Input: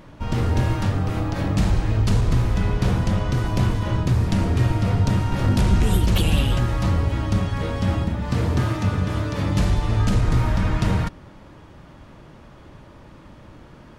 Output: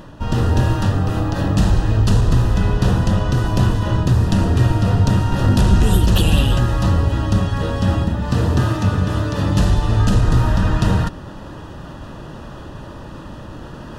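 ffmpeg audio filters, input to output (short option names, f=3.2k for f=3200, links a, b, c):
-af "asuperstop=centerf=2200:order=4:qfactor=4.5,areverse,acompressor=mode=upward:threshold=-29dB:ratio=2.5,areverse,volume=4.5dB"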